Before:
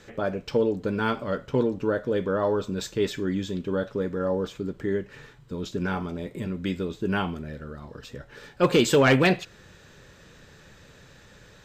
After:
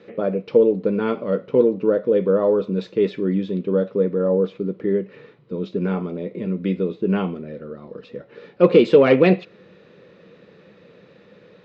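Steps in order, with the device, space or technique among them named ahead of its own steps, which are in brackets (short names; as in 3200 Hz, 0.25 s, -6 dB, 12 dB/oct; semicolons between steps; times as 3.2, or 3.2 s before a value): kitchen radio (speaker cabinet 190–3600 Hz, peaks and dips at 190 Hz +9 dB, 350 Hz +4 dB, 490 Hz +9 dB, 870 Hz -5 dB, 1600 Hz -9 dB, 3200 Hz -6 dB); gain +2 dB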